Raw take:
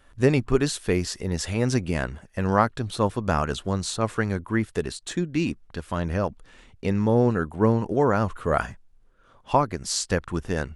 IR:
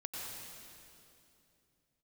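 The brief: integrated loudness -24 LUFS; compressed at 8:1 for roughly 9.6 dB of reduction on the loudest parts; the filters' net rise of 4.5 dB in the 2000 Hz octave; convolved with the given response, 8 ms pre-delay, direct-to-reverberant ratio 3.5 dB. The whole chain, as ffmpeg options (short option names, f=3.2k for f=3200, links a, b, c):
-filter_complex "[0:a]equalizer=f=2k:t=o:g=6,acompressor=threshold=-23dB:ratio=8,asplit=2[a][b];[1:a]atrim=start_sample=2205,adelay=8[c];[b][c]afir=irnorm=-1:irlink=0,volume=-4dB[d];[a][d]amix=inputs=2:normalize=0,volume=4dB"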